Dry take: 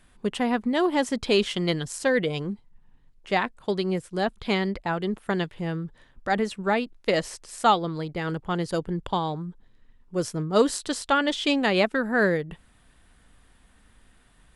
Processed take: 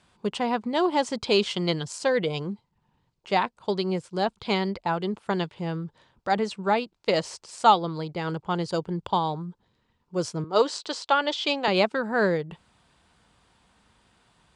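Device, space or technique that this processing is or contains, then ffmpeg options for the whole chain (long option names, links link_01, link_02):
car door speaker: -filter_complex "[0:a]highpass=94,equalizer=frequency=260:width_type=q:width=4:gain=-6,equalizer=frequency=920:width_type=q:width=4:gain=5,equalizer=frequency=1800:width_type=q:width=4:gain=-6,equalizer=frequency=4600:width_type=q:width=4:gain=4,lowpass=frequency=8200:width=0.5412,lowpass=frequency=8200:width=1.3066,asettb=1/sr,asplit=3[link_01][link_02][link_03];[link_01]atrim=end=10.444[link_04];[link_02]atrim=start=10.44:end=11.68,asetpts=PTS-STARTPTS,afade=type=in:duration=0.004:curve=qsin,afade=type=out:start_time=1.236:duration=0.004:curve=qsin,acrossover=split=280 7500:gain=0.141 1 0.0794[link_05][link_06][link_07];[link_05][link_06][link_07]amix=inputs=3:normalize=0[link_08];[link_03]atrim=start=11.676[link_09];[link_04][link_08]acrossfade=duration=0.004:curve1=hsin:curve2=qsin[link_10];[link_10][link_09]acrossfade=duration=0.004:curve1=qsin:curve2=hsin"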